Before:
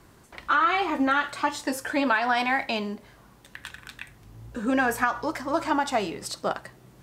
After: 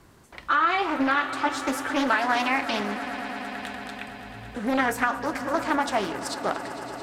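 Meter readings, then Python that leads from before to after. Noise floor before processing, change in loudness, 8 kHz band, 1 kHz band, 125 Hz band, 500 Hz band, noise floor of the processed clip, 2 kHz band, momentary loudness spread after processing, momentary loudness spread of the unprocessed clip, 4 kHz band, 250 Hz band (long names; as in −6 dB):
−55 dBFS, 0.0 dB, 0.0 dB, +0.5 dB, +0.5 dB, +0.5 dB, −49 dBFS, +0.5 dB, 13 LU, 19 LU, +1.0 dB, +0.5 dB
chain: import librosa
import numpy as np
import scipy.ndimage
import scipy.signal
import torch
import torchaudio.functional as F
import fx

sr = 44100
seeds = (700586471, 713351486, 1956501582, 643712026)

y = fx.echo_swell(x, sr, ms=112, loudest=5, wet_db=-17)
y = fx.doppler_dist(y, sr, depth_ms=0.45)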